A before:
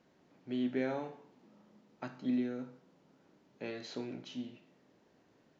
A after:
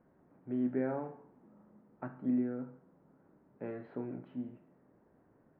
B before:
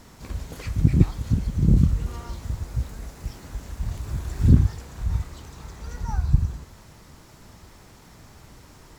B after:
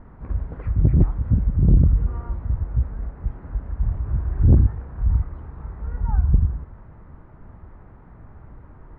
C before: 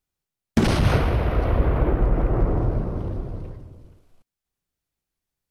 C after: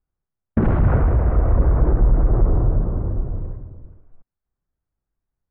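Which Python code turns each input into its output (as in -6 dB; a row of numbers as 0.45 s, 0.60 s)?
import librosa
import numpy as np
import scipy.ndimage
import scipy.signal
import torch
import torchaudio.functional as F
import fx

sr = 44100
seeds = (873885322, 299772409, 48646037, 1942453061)

y = scipy.signal.sosfilt(scipy.signal.butter(4, 1600.0, 'lowpass', fs=sr, output='sos'), x)
y = fx.low_shelf(y, sr, hz=96.0, db=10.0)
y = 10.0 ** (-7.5 / 20.0) * np.tanh(y / 10.0 ** (-7.5 / 20.0))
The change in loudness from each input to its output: +1.0 LU, +2.0 LU, +3.0 LU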